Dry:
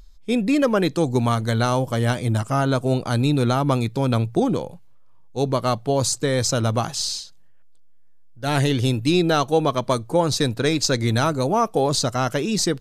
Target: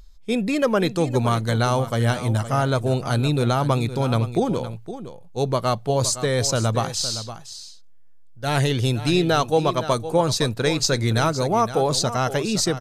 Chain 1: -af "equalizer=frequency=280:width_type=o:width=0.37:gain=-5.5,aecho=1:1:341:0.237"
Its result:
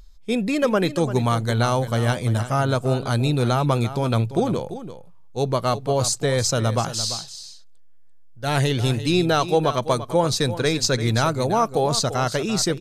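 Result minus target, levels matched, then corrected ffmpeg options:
echo 173 ms early
-af "equalizer=frequency=280:width_type=o:width=0.37:gain=-5.5,aecho=1:1:514:0.237"

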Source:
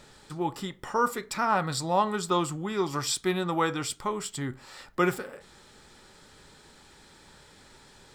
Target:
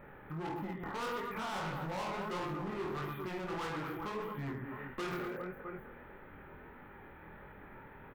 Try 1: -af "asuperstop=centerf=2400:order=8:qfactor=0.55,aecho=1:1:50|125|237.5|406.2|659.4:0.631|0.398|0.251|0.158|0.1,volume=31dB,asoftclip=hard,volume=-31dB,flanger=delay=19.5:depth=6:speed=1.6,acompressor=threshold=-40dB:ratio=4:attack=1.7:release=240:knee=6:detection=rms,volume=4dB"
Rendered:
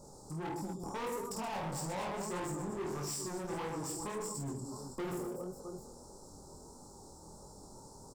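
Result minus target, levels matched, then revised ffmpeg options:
8,000 Hz band +15.5 dB
-af "asuperstop=centerf=6300:order=8:qfactor=0.55,aecho=1:1:50|125|237.5|406.2|659.4:0.631|0.398|0.251|0.158|0.1,volume=31dB,asoftclip=hard,volume=-31dB,flanger=delay=19.5:depth=6:speed=1.6,acompressor=threshold=-40dB:ratio=4:attack=1.7:release=240:knee=6:detection=rms,volume=4dB"

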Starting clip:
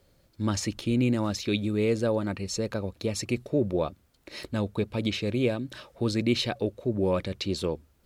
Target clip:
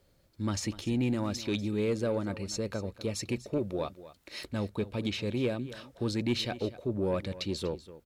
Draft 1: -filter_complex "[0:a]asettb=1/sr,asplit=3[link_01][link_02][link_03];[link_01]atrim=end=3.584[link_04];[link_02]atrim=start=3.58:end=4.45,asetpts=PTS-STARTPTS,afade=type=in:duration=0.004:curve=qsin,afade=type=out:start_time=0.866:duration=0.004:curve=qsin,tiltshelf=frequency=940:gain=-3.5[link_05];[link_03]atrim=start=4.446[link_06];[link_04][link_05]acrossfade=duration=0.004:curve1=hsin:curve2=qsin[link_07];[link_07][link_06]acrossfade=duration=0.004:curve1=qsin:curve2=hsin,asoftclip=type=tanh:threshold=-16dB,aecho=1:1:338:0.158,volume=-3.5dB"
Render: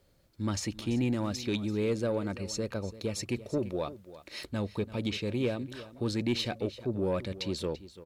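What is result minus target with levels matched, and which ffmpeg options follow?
echo 94 ms late
-filter_complex "[0:a]asettb=1/sr,asplit=3[link_01][link_02][link_03];[link_01]atrim=end=3.584[link_04];[link_02]atrim=start=3.58:end=4.45,asetpts=PTS-STARTPTS,afade=type=in:duration=0.004:curve=qsin,afade=type=out:start_time=0.866:duration=0.004:curve=qsin,tiltshelf=frequency=940:gain=-3.5[link_05];[link_03]atrim=start=4.446[link_06];[link_04][link_05]acrossfade=duration=0.004:curve1=hsin:curve2=qsin[link_07];[link_07][link_06]acrossfade=duration=0.004:curve1=qsin:curve2=hsin,asoftclip=type=tanh:threshold=-16dB,aecho=1:1:244:0.158,volume=-3.5dB"

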